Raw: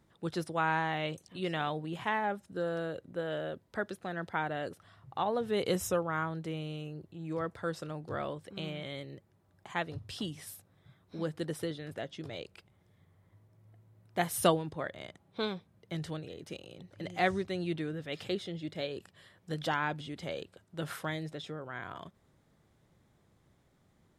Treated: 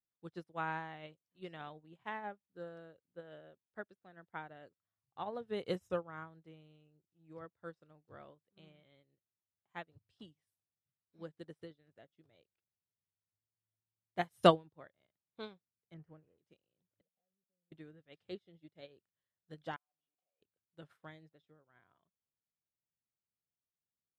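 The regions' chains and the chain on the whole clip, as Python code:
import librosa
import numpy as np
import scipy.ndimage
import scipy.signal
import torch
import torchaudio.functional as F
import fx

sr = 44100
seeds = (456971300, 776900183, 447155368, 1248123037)

y = fx.chain(x, sr, fx.zero_step(step_db=-51.0),
    fx.moving_average(points=12), at=(15.94, 16.38))
y = fx.chain(y, sr, fx.double_bandpass(hz=330.0, octaves=1.1),
    fx.level_steps(step_db=18), at=(17.01, 17.72))
y = fx.chain(y, sr, fx.over_compress(threshold_db=-44.0, ratio=-1.0),
    fx.vowel_filter(vowel='a'), at=(19.76, 20.42))
y = fx.high_shelf(y, sr, hz=6300.0, db=-9.0)
y = fx.upward_expand(y, sr, threshold_db=-49.0, expansion=2.5)
y = y * librosa.db_to_amplitude(3.5)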